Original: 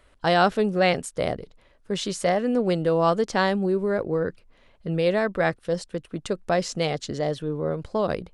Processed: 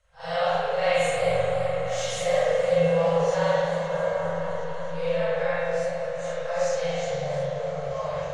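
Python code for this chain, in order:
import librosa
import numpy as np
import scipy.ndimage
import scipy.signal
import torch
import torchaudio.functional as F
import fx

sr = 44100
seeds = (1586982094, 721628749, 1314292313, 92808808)

y = fx.phase_scramble(x, sr, seeds[0], window_ms=200)
y = scipy.signal.sosfilt(scipy.signal.cheby1(5, 1.0, [170.0, 470.0], 'bandstop', fs=sr, output='sos'), y)
y = fx.peak_eq(y, sr, hz=6500.0, db=12.0, octaves=0.47)
y = fx.leveller(y, sr, passes=1, at=(0.65, 2.86))
y = fx.comb_fb(y, sr, f0_hz=540.0, decay_s=0.28, harmonics='all', damping=0.0, mix_pct=80)
y = fx.echo_opening(y, sr, ms=260, hz=400, octaves=1, feedback_pct=70, wet_db=-3)
y = fx.rev_spring(y, sr, rt60_s=1.4, pass_ms=(42,), chirp_ms=55, drr_db=-8.5)
y = fx.echo_warbled(y, sr, ms=108, feedback_pct=79, rate_hz=2.8, cents=143, wet_db=-12.0)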